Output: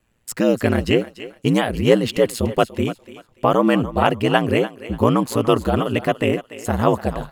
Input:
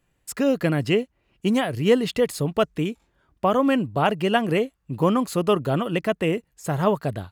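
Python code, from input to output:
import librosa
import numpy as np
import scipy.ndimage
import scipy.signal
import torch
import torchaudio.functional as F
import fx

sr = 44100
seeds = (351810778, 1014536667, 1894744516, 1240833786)

y = x * np.sin(2.0 * np.pi * 58.0 * np.arange(len(x)) / sr)
y = fx.echo_thinned(y, sr, ms=291, feedback_pct=29, hz=490.0, wet_db=-13.0)
y = y * 10.0 ** (6.5 / 20.0)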